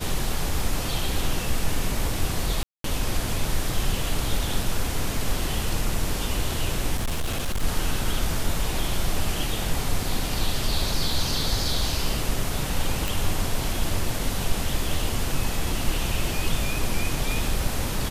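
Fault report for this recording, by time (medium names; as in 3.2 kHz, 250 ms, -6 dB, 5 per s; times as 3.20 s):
2.63–2.84 s: dropout 213 ms
6.96–7.64 s: clipped -21.5 dBFS
13.08 s: pop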